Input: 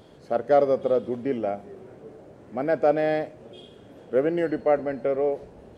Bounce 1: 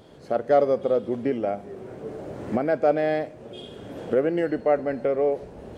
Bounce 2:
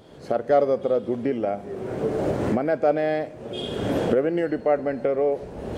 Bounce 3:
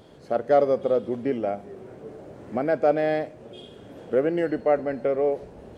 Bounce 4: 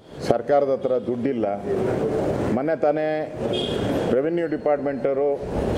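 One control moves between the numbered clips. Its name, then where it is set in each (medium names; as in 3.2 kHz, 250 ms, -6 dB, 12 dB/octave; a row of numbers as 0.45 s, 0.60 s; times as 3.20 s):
recorder AGC, rising by: 13 dB/s, 34 dB/s, 5.3 dB/s, 85 dB/s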